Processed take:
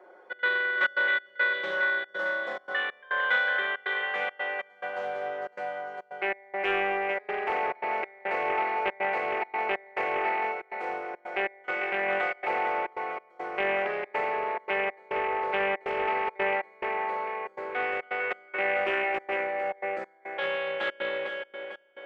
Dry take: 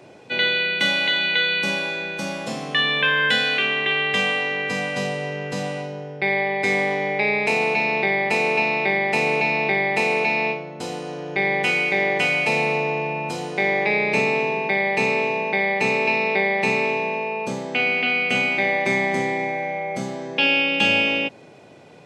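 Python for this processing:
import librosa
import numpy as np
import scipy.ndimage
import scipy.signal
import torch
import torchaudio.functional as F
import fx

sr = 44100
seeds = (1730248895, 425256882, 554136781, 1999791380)

y = scipy.signal.sosfilt(scipy.signal.butter(4, 400.0, 'highpass', fs=sr, output='sos'), x)
y = fx.echo_feedback(y, sr, ms=451, feedback_pct=51, wet_db=-7.0)
y = fx.step_gate(y, sr, bpm=140, pattern='xxx.xxxx.xx..xxx', floor_db=-24.0, edge_ms=4.5)
y = scipy.signal.savgol_filter(y, 41, 4, mode='constant')
y = fx.peak_eq(y, sr, hz=1400.0, db=6.0, octaves=0.63)
y = y + 0.85 * np.pad(y, (int(5.5 * sr / 1000.0), 0))[:len(y)]
y = fx.doppler_dist(y, sr, depth_ms=0.18)
y = y * librosa.db_to_amplitude(-7.0)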